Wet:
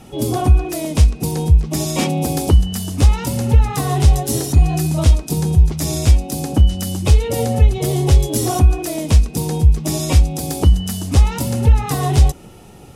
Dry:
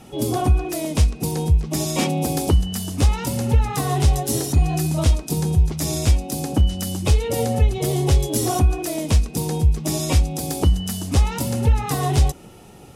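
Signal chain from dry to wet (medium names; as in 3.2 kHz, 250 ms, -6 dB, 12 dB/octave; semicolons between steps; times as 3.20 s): bass shelf 100 Hz +5 dB; trim +2 dB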